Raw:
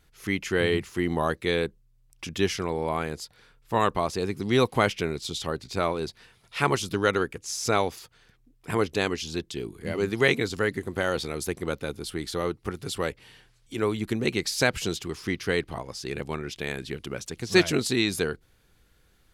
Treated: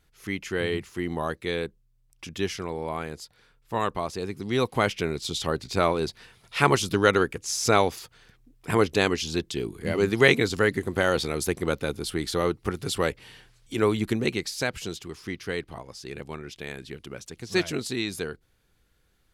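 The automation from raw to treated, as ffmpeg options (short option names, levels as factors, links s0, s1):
-af "volume=1.5,afade=t=in:st=4.55:d=1.03:silence=0.446684,afade=t=out:st=13.99:d=0.54:silence=0.375837"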